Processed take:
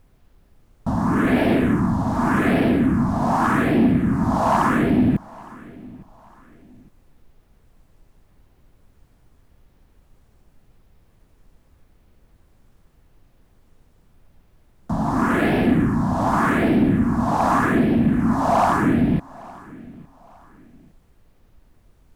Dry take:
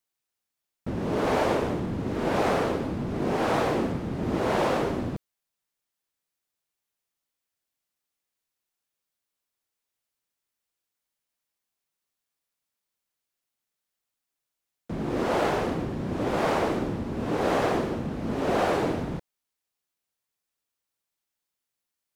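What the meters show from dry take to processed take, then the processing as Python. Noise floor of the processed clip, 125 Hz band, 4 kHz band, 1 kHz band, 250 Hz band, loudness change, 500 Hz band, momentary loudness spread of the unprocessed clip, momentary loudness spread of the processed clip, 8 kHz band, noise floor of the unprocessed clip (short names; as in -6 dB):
-58 dBFS, +10.0 dB, +0.5 dB, +8.0 dB, +11.5 dB, +8.0 dB, +1.5 dB, 7 LU, 4 LU, n/a, under -85 dBFS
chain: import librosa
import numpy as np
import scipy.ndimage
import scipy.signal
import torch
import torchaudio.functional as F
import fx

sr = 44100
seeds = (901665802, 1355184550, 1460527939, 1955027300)

y = fx.graphic_eq(x, sr, hz=(250, 500, 1000), db=(11, -5, 8))
y = fx.rider(y, sr, range_db=10, speed_s=0.5)
y = fx.small_body(y, sr, hz=(670.0, 1700.0), ring_ms=45, db=8)
y = fx.phaser_stages(y, sr, stages=4, low_hz=370.0, high_hz=1100.0, hz=0.85, feedback_pct=30)
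y = fx.dmg_noise_colour(y, sr, seeds[0], colour='brown', level_db=-60.0)
y = 10.0 ** (-16.0 / 20.0) * np.tanh(y / 10.0 ** (-16.0 / 20.0))
y = fx.echo_feedback(y, sr, ms=860, feedback_pct=34, wet_db=-22.5)
y = y * 10.0 ** (7.5 / 20.0)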